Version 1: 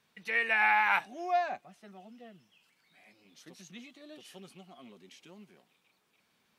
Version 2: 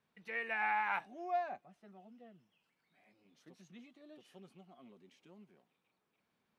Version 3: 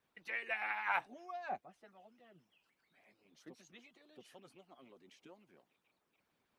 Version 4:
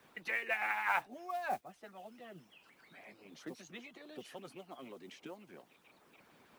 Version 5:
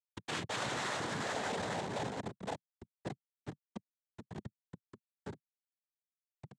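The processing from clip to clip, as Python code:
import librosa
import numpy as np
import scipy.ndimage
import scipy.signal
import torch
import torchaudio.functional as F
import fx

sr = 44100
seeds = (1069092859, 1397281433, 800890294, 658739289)

y1 = fx.high_shelf(x, sr, hz=2200.0, db=-11.5)
y1 = y1 * 10.0 ** (-5.5 / 20.0)
y2 = fx.hpss(y1, sr, part='harmonic', gain_db=-17)
y2 = y2 * 10.0 ** (6.0 / 20.0)
y3 = fx.mod_noise(y2, sr, seeds[0], snr_db=24)
y3 = fx.band_squash(y3, sr, depth_pct=40)
y3 = y3 * 10.0 ** (6.0 / 20.0)
y4 = fx.echo_pitch(y3, sr, ms=177, semitones=-3, count=3, db_per_echo=-3.0)
y4 = fx.schmitt(y4, sr, flips_db=-37.5)
y4 = fx.noise_vocoder(y4, sr, seeds[1], bands=6)
y4 = y4 * 10.0 ** (3.5 / 20.0)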